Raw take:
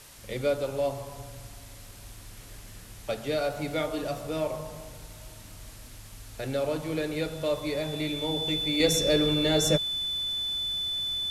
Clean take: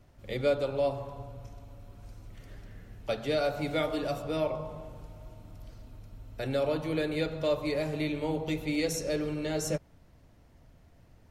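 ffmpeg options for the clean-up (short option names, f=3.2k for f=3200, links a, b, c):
-af "bandreject=f=3.5k:w=30,afwtdn=0.0035,asetnsamples=n=441:p=0,asendcmd='8.8 volume volume -7dB',volume=0dB"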